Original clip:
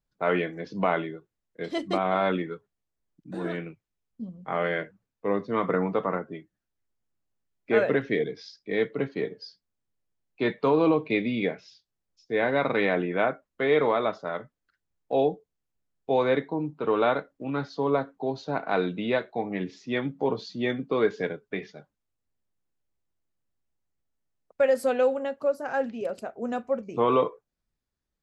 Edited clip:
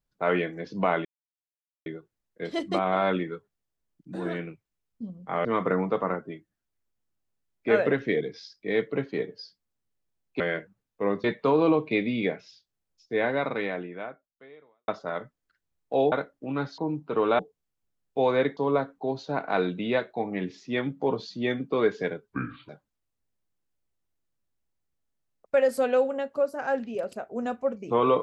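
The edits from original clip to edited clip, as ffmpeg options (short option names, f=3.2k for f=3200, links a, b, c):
-filter_complex "[0:a]asplit=12[a][b][c][d][e][f][g][h][i][j][k][l];[a]atrim=end=1.05,asetpts=PTS-STARTPTS,afade=t=out:st=1.046:d=0.004:c=hsin,apad=pad_dur=0.81[m];[b]atrim=start=1.05:end=4.642,asetpts=PTS-STARTPTS,afade=t=in:d=0.004:c=hsin[n];[c]atrim=start=5.478:end=10.432[o];[d]atrim=start=4.638:end=5.482[p];[e]atrim=start=10.428:end=14.07,asetpts=PTS-STARTPTS,afade=t=out:st=1.902:d=1.74:c=qua[q];[f]atrim=start=14.07:end=15.312,asetpts=PTS-STARTPTS,afade=t=in:d=0.004:c=hsin[r];[g]atrim=start=17.098:end=17.762[s];[h]atrim=start=16.488:end=17.102[t];[i]atrim=start=15.308:end=16.492[u];[j]atrim=start=17.758:end=21.494[v];[k]atrim=start=21.49:end=21.75,asetpts=PTS-STARTPTS,asetrate=29547,aresample=44100,atrim=end_sample=17113,asetpts=PTS-STARTPTS[w];[l]atrim=start=21.746[x];[m][n]concat=n=2:v=0:a=1[y];[y][o]acrossfade=d=0.004:c1=hsin:c2=hsin[z];[z][p]acrossfade=d=0.004:c1=hsin:c2=hsin[aa];[q][r]concat=n=2:v=0:a=1[ab];[aa][ab]acrossfade=d=0.004:c1=hsin:c2=hsin[ac];[ac][s]acrossfade=d=0.004:c1=hsin:c2=hsin[ad];[ad][t]acrossfade=d=0.004:c1=hsin:c2=hsin[ae];[ae][u]acrossfade=d=0.004:c1=hsin:c2=hsin[af];[af][v]acrossfade=d=0.004:c1=hsin:c2=hsin[ag];[ag][w]acrossfade=d=0.004:c1=hsin:c2=hsin[ah];[ah][x]acrossfade=d=0.004:c1=hsin:c2=hsin"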